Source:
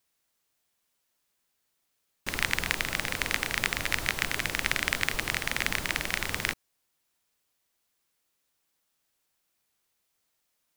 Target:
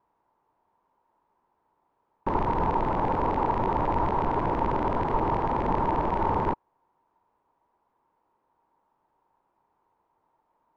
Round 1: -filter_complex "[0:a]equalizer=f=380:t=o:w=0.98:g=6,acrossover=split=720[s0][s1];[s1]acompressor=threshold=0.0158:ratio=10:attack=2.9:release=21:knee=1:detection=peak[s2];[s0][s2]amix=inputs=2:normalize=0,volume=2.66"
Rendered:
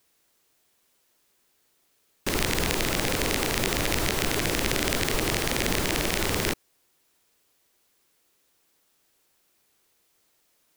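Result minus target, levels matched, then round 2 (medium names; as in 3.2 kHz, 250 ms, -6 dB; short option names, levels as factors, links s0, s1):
1 kHz band -10.5 dB
-filter_complex "[0:a]equalizer=f=380:t=o:w=0.98:g=6,acrossover=split=720[s0][s1];[s1]acompressor=threshold=0.0158:ratio=10:attack=2.9:release=21:knee=1:detection=peak,lowpass=f=930:t=q:w=9[s2];[s0][s2]amix=inputs=2:normalize=0,volume=2.66"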